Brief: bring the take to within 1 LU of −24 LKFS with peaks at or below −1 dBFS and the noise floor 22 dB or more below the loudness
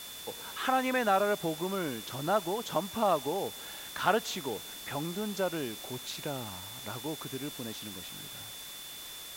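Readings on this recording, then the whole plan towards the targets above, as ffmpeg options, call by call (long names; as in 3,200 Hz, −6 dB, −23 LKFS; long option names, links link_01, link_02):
interfering tone 3,500 Hz; level of the tone −46 dBFS; background noise floor −45 dBFS; target noise floor −56 dBFS; integrated loudness −33.5 LKFS; sample peak −11.0 dBFS; target loudness −24.0 LKFS
→ -af "bandreject=frequency=3500:width=30"
-af "afftdn=noise_reduction=11:noise_floor=-45"
-af "volume=9.5dB"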